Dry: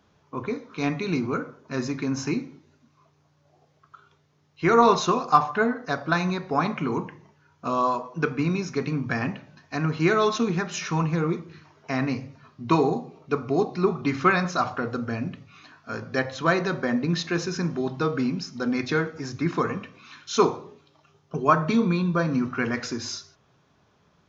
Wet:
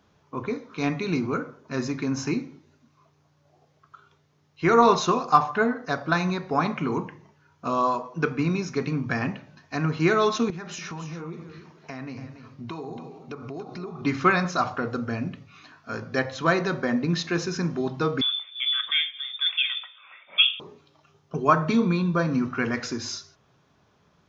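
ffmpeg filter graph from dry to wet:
-filter_complex "[0:a]asettb=1/sr,asplit=3[s0][s1][s2];[s0]atrim=end=10.504[s3];[s1]atrim=start=10.5:end=14.02,asetpts=PTS-STARTPTS,afade=t=in:d=0.004:c=qsin,afade=t=out:st=3.516:d=0.004:c=qsin,acompressor=threshold=0.0224:ratio=6:attack=3.2:release=140:knee=1:detection=peak,aecho=1:1:284:0.282,atrim=end_sample=155232[s4];[s2]atrim=start=14.016[s5];[s3][s4]acrossfade=d=0.004:c1=hsin:c2=qsin[s6];[s6][s5]acrossfade=d=0.004:c1=qsin:c2=hsin,asettb=1/sr,asplit=3[s7][s8][s9];[s7]atrim=end=18.214[s10];[s8]atrim=start=18.21:end=20.6,asetpts=PTS-STARTPTS,afade=t=in:d=0.004:c=qsin,afade=t=out:st=2.386:d=0.004:c=qsin,lowpass=f=3100:t=q:w=0.5098,lowpass=f=3100:t=q:w=0.6013,lowpass=f=3100:t=q:w=0.9,lowpass=f=3100:t=q:w=2.563,afreqshift=-3700,highpass=f=990:p=1[s11];[s9]atrim=start=20.596[s12];[s10][s11]acrossfade=d=0.004:c1=hsin:c2=qsin[s13];[s13][s12]acrossfade=d=0.004:c1=qsin:c2=hsin"

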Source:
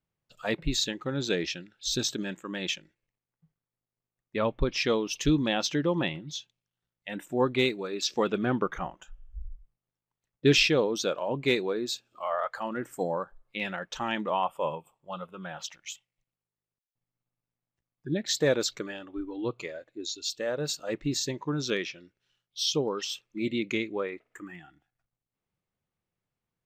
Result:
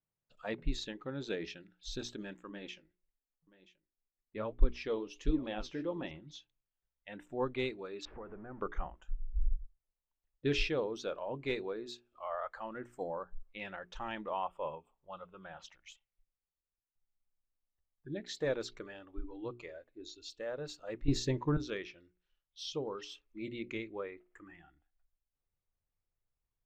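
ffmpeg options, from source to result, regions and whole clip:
-filter_complex "[0:a]asettb=1/sr,asplit=3[s0][s1][s2];[s0]atrim=end=2.494[s3];[s1]atrim=start=2.49:end=6.11,asetpts=PTS-STARTPTS,afade=t=in:d=0.004:c=qsin,afade=t=out:st=3.616:d=0.004:c=qsin,equalizer=f=300:t=o:w=1.6:g=4.5,aecho=1:1:980:0.126,atrim=end_sample=159642,flanger=delay=3:depth=9.7:regen=57:speed=1.4:shape=triangular[s4];[s2]atrim=start=6.106[s5];[s3][s4]acrossfade=d=0.004:c1=hsin:c2=qsin[s6];[s6][s5]acrossfade=d=0.004:c1=qsin:c2=hsin,asettb=1/sr,asplit=3[s7][s8][s9];[s7]atrim=end=8.054[s10];[s8]atrim=start=8.05:end=8.6,asetpts=PTS-STARTPTS,afade=t=in:d=0.004:c=qsin,afade=t=out:st=0.546:d=0.004:c=qsin,aeval=exprs='val(0)+0.5*0.0251*sgn(val(0))':c=same,lowpass=f=1700:w=0.5412,lowpass=f=1700:w=1.3066,acompressor=threshold=0.00631:ratio=2:attack=3.2:release=140:knee=1:detection=peak[s11];[s9]atrim=start=8.596[s12];[s10][s11]acrossfade=d=0.004:c1=hsin:c2=qsin[s13];[s13][s12]acrossfade=d=0.004:c1=qsin:c2=hsin,asettb=1/sr,asplit=3[s14][s15][s16];[s14]atrim=end=21.084[s17];[s15]atrim=start=21.08:end=21.57,asetpts=PTS-STARTPTS,afade=t=in:d=0.004:c=qsin,afade=t=out:st=0.486:d=0.004:c=qsin,lowshelf=f=250:g=8.5,acontrast=86[s18];[s16]atrim=start=21.566[s19];[s17][s18]acrossfade=d=0.004:c1=hsin:c2=qsin[s20];[s20][s19]acrossfade=d=0.004:c1=qsin:c2=hsin,aemphasis=mode=reproduction:type=75fm,bandreject=f=60:t=h:w=6,bandreject=f=120:t=h:w=6,bandreject=f=180:t=h:w=6,bandreject=f=240:t=h:w=6,bandreject=f=300:t=h:w=6,bandreject=f=360:t=h:w=6,bandreject=f=420:t=h:w=6,asubboost=boost=10:cutoff=52,volume=0.376"

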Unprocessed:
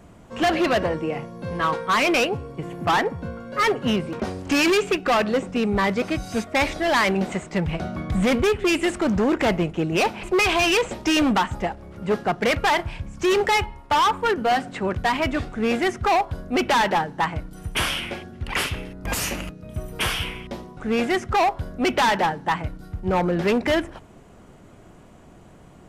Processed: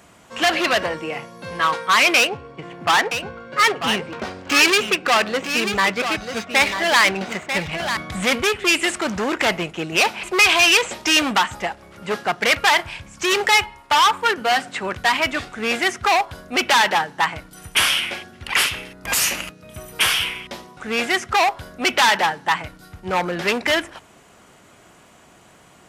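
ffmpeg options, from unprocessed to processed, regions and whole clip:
-filter_complex "[0:a]asettb=1/sr,asplit=3[s0][s1][s2];[s0]atrim=end=2.174[s3];[s1]atrim=start=2.17:end=7.97,asetpts=PTS-STARTPTS,afade=t=in:d=0.004:c=qsin,afade=t=out:st=5.796:d=0.004:c=qsin,adynamicsmooth=sensitivity=6.5:basefreq=3100,aecho=1:1:942:0.376,atrim=end_sample=255780[s4];[s2]atrim=start=7.966[s5];[s3][s4]acrossfade=d=0.004:c1=hsin:c2=qsin[s6];[s6][s5]acrossfade=d=0.004:c1=qsin:c2=hsin,highpass=f=84:p=1,tiltshelf=f=800:g=-7.5,volume=1.19"

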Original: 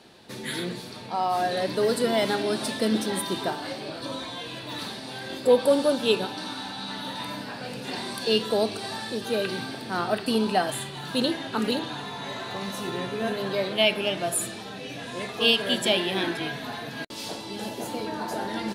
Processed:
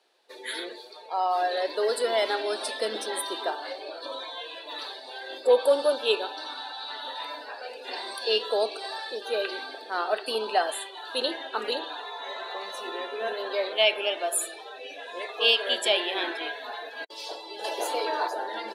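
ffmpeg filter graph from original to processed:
-filter_complex "[0:a]asettb=1/sr,asplit=3[s0][s1][s2];[s0]atrim=end=17.644[s3];[s1]atrim=start=17.64:end=18.28,asetpts=PTS-STARTPTS,afade=t=in:d=0.004:c=qsin,afade=t=out:st=0.636:d=0.004:c=qsin,equalizer=f=210:w=2.4:g=-12.5,acontrast=64[s4];[s2]atrim=start=18.276[s5];[s3][s4]acrossfade=d=0.004:c1=hsin:c2=qsin[s6];[s6][s5]acrossfade=d=0.004:c1=qsin:c2=hsin,highpass=f=410:w=0.5412,highpass=f=410:w=1.3066,afftdn=nr=14:nf=-40"

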